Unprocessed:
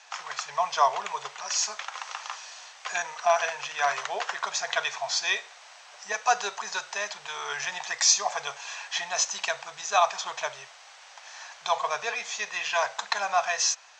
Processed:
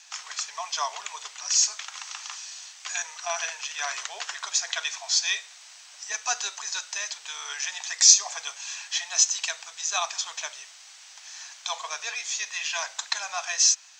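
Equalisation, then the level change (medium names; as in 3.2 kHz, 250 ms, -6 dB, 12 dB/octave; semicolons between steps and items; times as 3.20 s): tilt EQ +5.5 dB/octave; -8.0 dB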